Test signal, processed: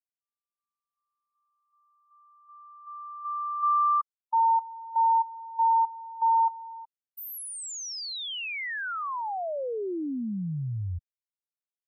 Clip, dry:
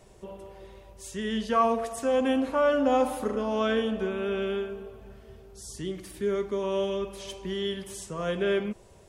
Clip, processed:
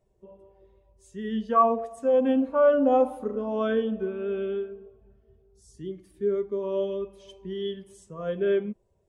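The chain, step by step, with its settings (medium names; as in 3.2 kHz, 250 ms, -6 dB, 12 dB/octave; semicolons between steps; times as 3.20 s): spectral contrast expander 1.5:1; trim +2.5 dB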